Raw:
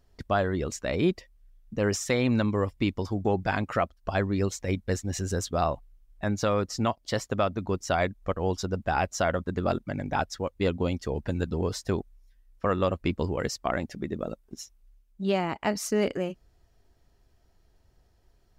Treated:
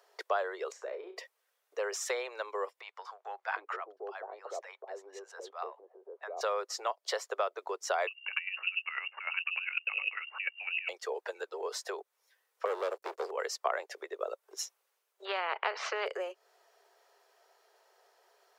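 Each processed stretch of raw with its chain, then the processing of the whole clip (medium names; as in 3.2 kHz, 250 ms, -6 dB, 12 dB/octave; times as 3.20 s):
0.72–1.17 s: compression 4:1, threshold -39 dBFS + tilt EQ -4.5 dB/octave + flutter echo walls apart 5.9 m, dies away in 0.25 s
2.81–6.41 s: RIAA curve playback + compression 5:1, threshold -27 dBFS + bands offset in time highs, lows 750 ms, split 800 Hz
8.07–10.89 s: compressor with a negative ratio -35 dBFS + square tremolo 10 Hz, depth 65%, duty 20% + frequency inversion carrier 2.8 kHz
12.65–13.31 s: high-order bell 1.4 kHz -11 dB 2.8 oct + band-stop 160 Hz, Q 5.3 + waveshaping leveller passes 3
15.25–16.06 s: low-pass 3 kHz 24 dB/octave + spectrum-flattening compressor 2:1
whole clip: compression 6:1, threshold -36 dBFS; steep high-pass 400 Hz 72 dB/octave; peaking EQ 1.1 kHz +5.5 dB 1.6 oct; trim +5 dB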